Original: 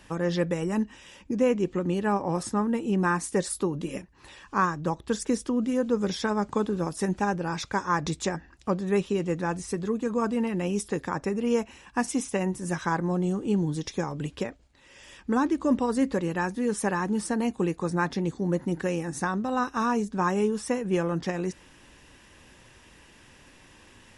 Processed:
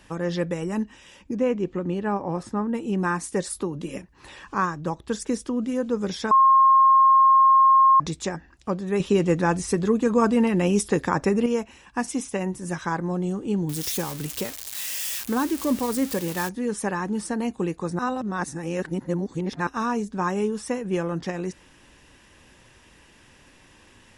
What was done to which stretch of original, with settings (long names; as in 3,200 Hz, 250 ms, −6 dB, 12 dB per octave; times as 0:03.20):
0:01.34–0:02.73: low-pass filter 3,500 Hz → 2,000 Hz 6 dB per octave
0:03.54–0:04.55: multiband upward and downward compressor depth 40%
0:06.31–0:08.00: beep over 1,070 Hz −12 dBFS
0:09.00–0:11.46: clip gain +7 dB
0:13.69–0:16.49: spike at every zero crossing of −21.5 dBFS
0:17.99–0:19.67: reverse